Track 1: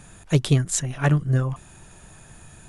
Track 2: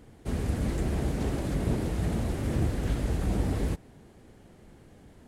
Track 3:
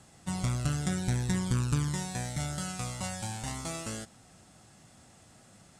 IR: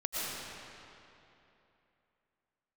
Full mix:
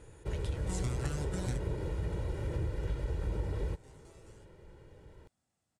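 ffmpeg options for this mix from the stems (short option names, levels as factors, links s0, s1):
-filter_complex "[0:a]highpass=620,volume=0.158,asplit=2[s0][s1];[1:a]aemphasis=mode=reproduction:type=50kf,aecho=1:1:2.1:0.78,volume=0.668[s2];[2:a]adelay=400,volume=0.841[s3];[s1]apad=whole_len=273058[s4];[s3][s4]sidechaingate=range=0.0562:threshold=0.00141:ratio=16:detection=peak[s5];[s0][s2][s5]amix=inputs=3:normalize=0,acompressor=threshold=0.0178:ratio=2"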